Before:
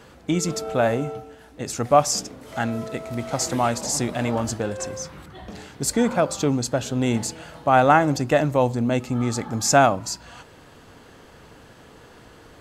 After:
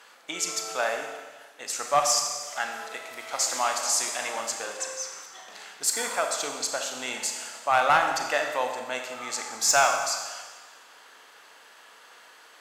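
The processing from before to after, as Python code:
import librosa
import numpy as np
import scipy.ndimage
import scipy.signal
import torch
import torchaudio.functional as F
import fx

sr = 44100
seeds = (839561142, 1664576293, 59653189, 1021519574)

y = scipy.signal.sosfilt(scipy.signal.butter(2, 1000.0, 'highpass', fs=sr, output='sos'), x)
y = fx.clip_asym(y, sr, top_db=-14.5, bottom_db=-12.0)
y = fx.rev_schroeder(y, sr, rt60_s=1.4, comb_ms=28, drr_db=3.5)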